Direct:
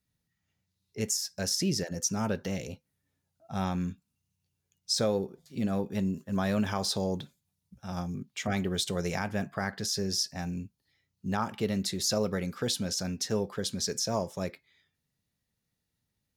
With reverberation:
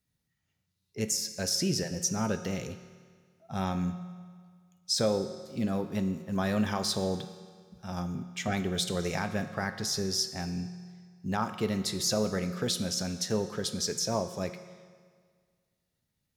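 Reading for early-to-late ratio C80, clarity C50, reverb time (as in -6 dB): 12.0 dB, 11.0 dB, 1.8 s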